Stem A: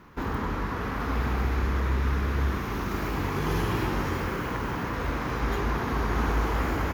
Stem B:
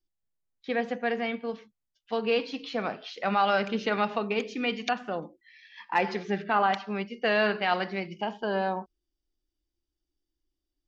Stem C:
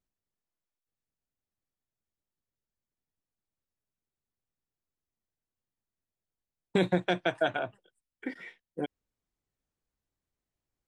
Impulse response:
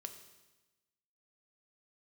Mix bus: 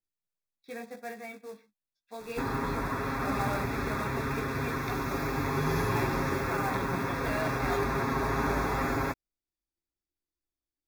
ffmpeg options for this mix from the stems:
-filter_complex "[0:a]aecho=1:1:7.4:0.83,acrusher=bits=7:mix=0:aa=0.000001,adelay=2200,volume=0.596,asplit=2[s0][s1];[s1]volume=0.422[s2];[1:a]flanger=delay=17:depth=3.9:speed=0.19,acrusher=bits=3:mode=log:mix=0:aa=0.000001,volume=0.376[s3];[2:a]volume=0.237[s4];[3:a]atrim=start_sample=2205[s5];[s2][s5]afir=irnorm=-1:irlink=0[s6];[s0][s3][s4][s6]amix=inputs=4:normalize=0,asuperstop=centerf=3000:order=8:qfactor=5.3,lowshelf=f=130:g=-3.5"

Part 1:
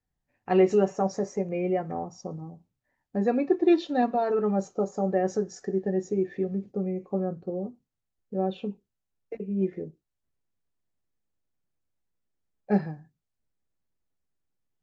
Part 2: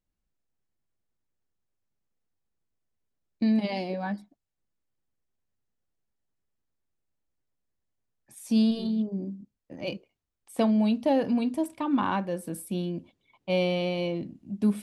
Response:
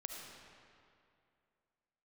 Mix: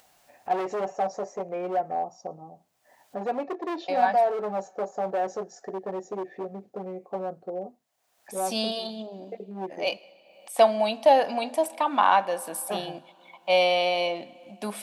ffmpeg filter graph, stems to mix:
-filter_complex "[0:a]asoftclip=type=hard:threshold=0.0596,volume=0.596[s0];[1:a]tiltshelf=f=640:g=-9,volume=0.891,asplit=3[s1][s2][s3];[s1]atrim=end=3.26,asetpts=PTS-STARTPTS,afade=t=out:st=3.256:d=0.004:c=hsin[s4];[s2]atrim=start=3.26:end=3.88,asetpts=PTS-STARTPTS,volume=0[s5];[s3]atrim=start=3.88,asetpts=PTS-STARTPTS,afade=t=in:d=0.004:c=hsin[s6];[s4][s5][s6]concat=n=3:v=0:a=1,asplit=2[s7][s8];[s8]volume=0.178[s9];[2:a]atrim=start_sample=2205[s10];[s9][s10]afir=irnorm=-1:irlink=0[s11];[s0][s7][s11]amix=inputs=3:normalize=0,highpass=f=370:p=1,acompressor=mode=upward:threshold=0.00562:ratio=2.5,equalizer=f=700:w=1.6:g=14"

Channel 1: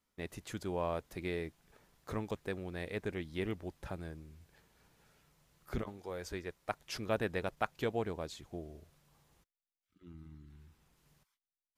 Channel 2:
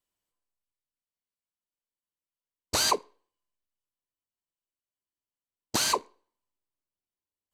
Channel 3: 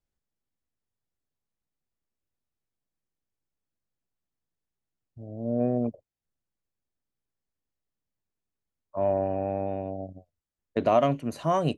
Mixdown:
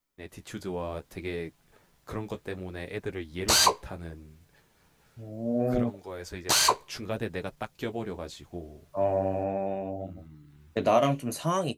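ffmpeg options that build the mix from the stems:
-filter_complex "[0:a]acrossover=split=470|3000[s0][s1][s2];[s1]acompressor=threshold=0.0112:ratio=6[s3];[s0][s3][s2]amix=inputs=3:normalize=0,volume=1.12[s4];[1:a]equalizer=f=230:t=o:w=1:g=-13.5,adelay=750,volume=1.26[s5];[2:a]aemphasis=mode=production:type=75kf,volume=0.668[s6];[s4][s5][s6]amix=inputs=3:normalize=0,dynaudnorm=f=130:g=5:m=2.11,flanger=delay=6.8:depth=9:regen=-34:speed=0.67:shape=sinusoidal"

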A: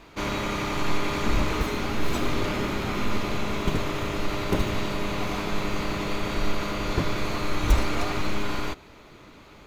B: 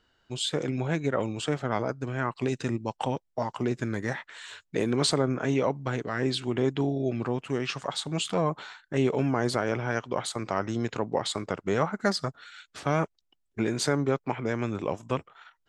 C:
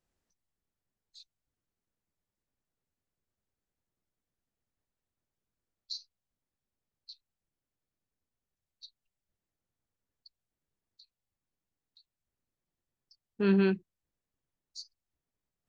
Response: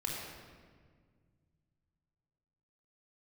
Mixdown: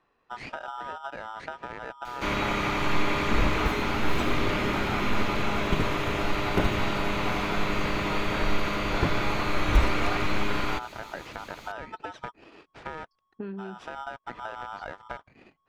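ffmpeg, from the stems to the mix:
-filter_complex "[0:a]adelay=2050,volume=0.944[s0];[1:a]alimiter=limit=0.141:level=0:latency=1:release=150,aeval=exprs='val(0)*sgn(sin(2*PI*1100*n/s))':c=same,volume=1[s1];[2:a]volume=1.33[s2];[s1][s2]amix=inputs=2:normalize=0,lowpass=1200,acompressor=threshold=0.02:ratio=16,volume=1[s3];[s0][s3]amix=inputs=2:normalize=0,acrossover=split=2900[s4][s5];[s5]acompressor=threshold=0.00158:ratio=4:attack=1:release=60[s6];[s4][s6]amix=inputs=2:normalize=0,highshelf=f=2300:g=11.5"

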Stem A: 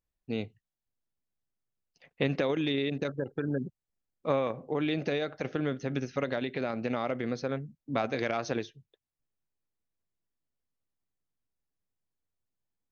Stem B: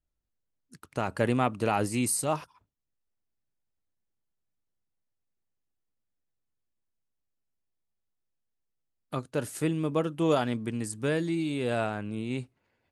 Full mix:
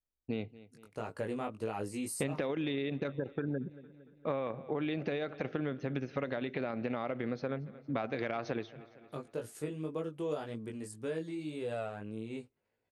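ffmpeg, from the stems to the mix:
-filter_complex "[0:a]lowpass=3300,agate=range=0.0224:threshold=0.00355:ratio=3:detection=peak,volume=1.26,asplit=2[s0][s1];[s1]volume=0.0668[s2];[1:a]equalizer=f=460:t=o:w=0.77:g=7,flanger=delay=18:depth=2.4:speed=1.8,volume=0.398[s3];[s2]aecho=0:1:229|458|687|916|1145|1374|1603|1832:1|0.53|0.281|0.149|0.0789|0.0418|0.0222|0.0117[s4];[s0][s3][s4]amix=inputs=3:normalize=0,acompressor=threshold=0.0224:ratio=3"

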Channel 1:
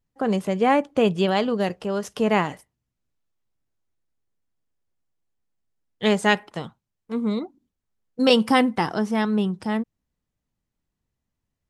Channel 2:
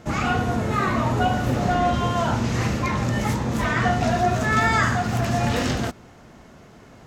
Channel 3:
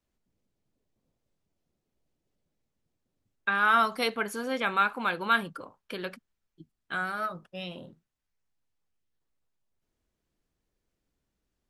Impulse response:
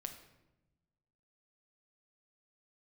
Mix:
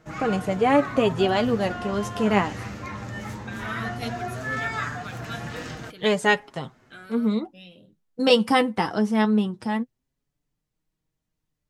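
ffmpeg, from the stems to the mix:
-filter_complex "[0:a]volume=1.41[s0];[1:a]equalizer=f=1600:t=o:w=1.1:g=4.5,volume=0.376[s1];[2:a]equalizer=f=1000:w=1.2:g=-14.5,volume=0.794[s2];[s0][s1][s2]amix=inputs=3:normalize=0,flanger=delay=6.3:depth=3.9:regen=32:speed=0.18:shape=sinusoidal"

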